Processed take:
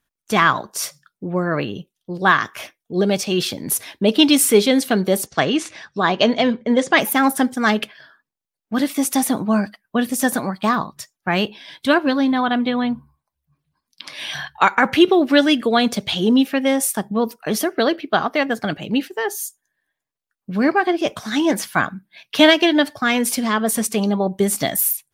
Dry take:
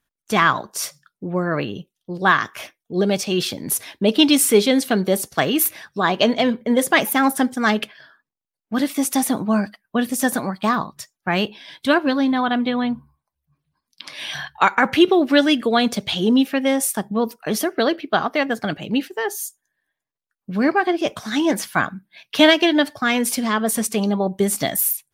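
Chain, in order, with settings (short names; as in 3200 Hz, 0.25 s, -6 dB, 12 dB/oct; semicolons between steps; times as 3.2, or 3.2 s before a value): 5.26–6.98 inverse Chebyshev low-pass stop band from 12000 Hz, stop band 40 dB; gain +1 dB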